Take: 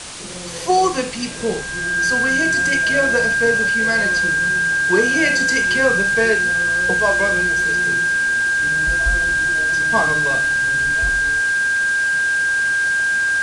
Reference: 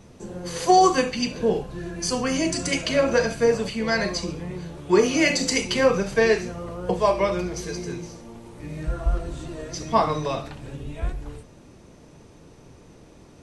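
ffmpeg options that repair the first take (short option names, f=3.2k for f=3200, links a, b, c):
-af "bandreject=f=1.6k:w=30,afwtdn=0.032"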